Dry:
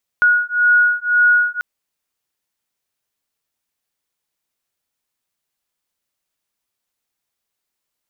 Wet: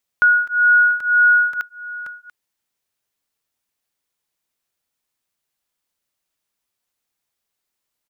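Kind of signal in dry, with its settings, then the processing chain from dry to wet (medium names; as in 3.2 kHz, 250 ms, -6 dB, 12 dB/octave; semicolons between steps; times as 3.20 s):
beating tones 1.45 kHz, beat 1.9 Hz, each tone -14.5 dBFS 1.39 s
delay 688 ms -18 dB; crackling interface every 0.53 s, samples 128, repeat, from 0.47 s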